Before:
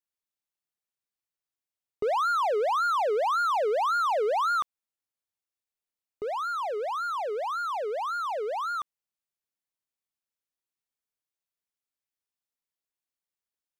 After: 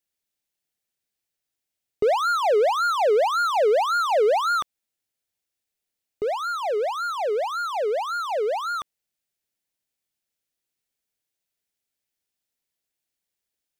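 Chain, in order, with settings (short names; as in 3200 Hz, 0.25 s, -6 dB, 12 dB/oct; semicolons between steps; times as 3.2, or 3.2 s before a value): bell 1100 Hz -8.5 dB 0.68 oct; gain +8 dB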